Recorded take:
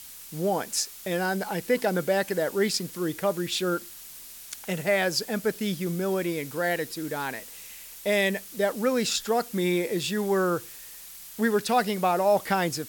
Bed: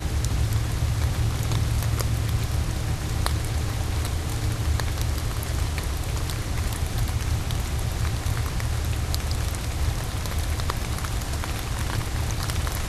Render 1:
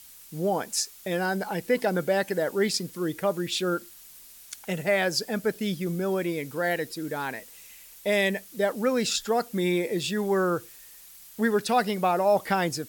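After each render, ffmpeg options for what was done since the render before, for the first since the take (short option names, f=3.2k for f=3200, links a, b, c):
-af "afftdn=nr=6:nf=-44"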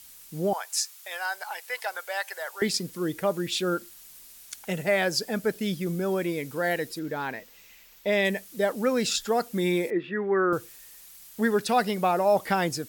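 -filter_complex "[0:a]asettb=1/sr,asplit=3[a][b][c];[a]atrim=end=0.534[d];[b]atrim=start=0.53:end=2.62,asetpts=PTS-STARTPTS,afade=t=in:d=0.004:c=qsin,afade=t=out:st=2.086:d=0.004:c=qsin,highpass=f=790:w=0.5412,highpass=f=790:w=1.3066[e];[c]atrim=start=2.616[f];[d][e]acrossfade=d=0.004:c1=hsin:c2=qsin[g];[g][f]acrossfade=d=0.004:c1=qsin:c2=hsin,asettb=1/sr,asplit=3[h][i][j];[h]atrim=end=6.994[k];[i]atrim=start=6.99:end=8.25,asetpts=PTS-STARTPTS,afade=t=in:d=0.004:c=qsin,afade=t=out:st=1.256:d=0.004:c=qsin,equalizer=f=10k:w=0.96:g=-13[l];[j]atrim=start=8.246[m];[k][l]acrossfade=d=0.004:c1=hsin:c2=qsin[n];[n][m]acrossfade=d=0.004:c1=qsin:c2=hsin,asettb=1/sr,asplit=3[o][p][q];[o]atrim=end=9.904[r];[p]atrim=start=9.9:end=10.53,asetpts=PTS-STARTPTS,afade=t=in:d=0.004:c=qsin,afade=t=out:st=0.626:d=0.004:c=qsin,highpass=250,equalizer=f=330:t=q:w=4:g=6,equalizer=f=590:t=q:w=4:g=-6,equalizer=f=880:t=q:w=4:g=-5,equalizer=f=1.3k:t=q:w=4:g=4,equalizer=f=1.9k:t=q:w=4:g=6,lowpass=f=2.1k:w=0.5412,lowpass=f=2.1k:w=1.3066[s];[q]atrim=start=10.526[t];[r][s]acrossfade=d=0.004:c1=hsin:c2=qsin[u];[u][t]acrossfade=d=0.004:c1=qsin:c2=hsin"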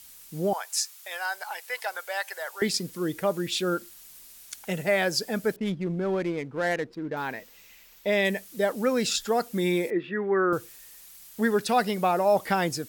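-filter_complex "[0:a]asettb=1/sr,asplit=3[a][b][c];[a]atrim=end=5.564[d];[b]atrim=start=5.56:end=7.17,asetpts=PTS-STARTPTS,afade=t=in:d=0.004:c=qsin,afade=t=out:st=1.606:d=0.004:c=qsin,adynamicsmooth=sensitivity=5:basefreq=1k[e];[c]atrim=start=7.166[f];[d][e]acrossfade=d=0.004:c1=hsin:c2=qsin[g];[g][f]acrossfade=d=0.004:c1=qsin:c2=hsin"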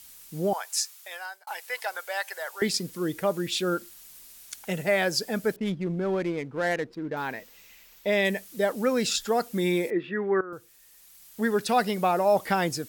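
-filter_complex "[0:a]asplit=3[a][b][c];[a]atrim=end=1.47,asetpts=PTS-STARTPTS,afade=t=out:st=0.75:d=0.72:c=qsin[d];[b]atrim=start=1.47:end=10.41,asetpts=PTS-STARTPTS,afade=t=in:d=0.004:c=hsin,afade=t=out:st=8.936:d=0.004:c=hsin:silence=0.133352[e];[c]atrim=start=10.41,asetpts=PTS-STARTPTS,afade=t=in:d=1.3:silence=0.133352[f];[d][e][f]concat=n=3:v=0:a=1"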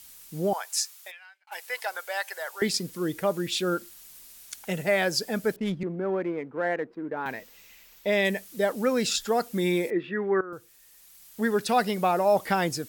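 -filter_complex "[0:a]asplit=3[a][b][c];[a]afade=t=out:st=1.1:d=0.02[d];[b]bandpass=f=2.4k:t=q:w=3.9,afade=t=in:st=1.1:d=0.02,afade=t=out:st=1.51:d=0.02[e];[c]afade=t=in:st=1.51:d=0.02[f];[d][e][f]amix=inputs=3:normalize=0,asettb=1/sr,asplit=3[g][h][i];[g]atrim=end=5.834[j];[h]atrim=start=5.83:end=7.26,asetpts=PTS-STARTPTS,afade=t=in:d=0.004:c=qsin,afade=t=out:st=1.426:d=0.004:c=qsin,acrossover=split=180 2300:gain=0.158 1 0.112[k][l][m];[k][l][m]amix=inputs=3:normalize=0[n];[i]atrim=start=7.256[o];[j][n]acrossfade=d=0.004:c1=hsin:c2=qsin[p];[p][o]acrossfade=d=0.004:c1=qsin:c2=hsin"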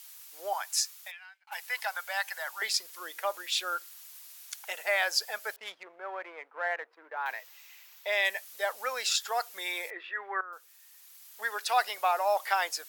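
-af "highpass=f=730:w=0.5412,highpass=f=730:w=1.3066,equalizer=f=8.7k:w=2.4:g=-3"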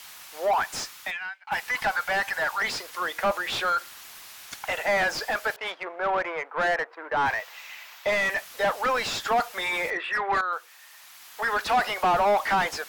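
-filter_complex "[0:a]asplit=2[a][b];[b]highpass=f=720:p=1,volume=28dB,asoftclip=type=tanh:threshold=-12.5dB[c];[a][c]amix=inputs=2:normalize=0,lowpass=f=1.1k:p=1,volume=-6dB"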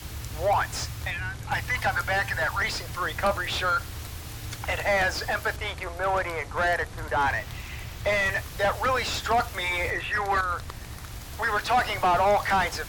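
-filter_complex "[1:a]volume=-12dB[a];[0:a][a]amix=inputs=2:normalize=0"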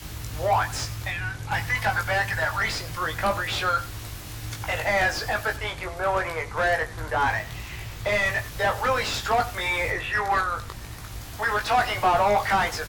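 -filter_complex "[0:a]asplit=2[a][b];[b]adelay=19,volume=-5dB[c];[a][c]amix=inputs=2:normalize=0,aecho=1:1:92:0.133"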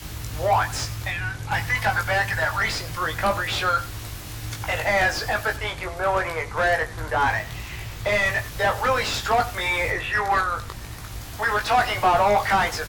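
-af "volume=2dB"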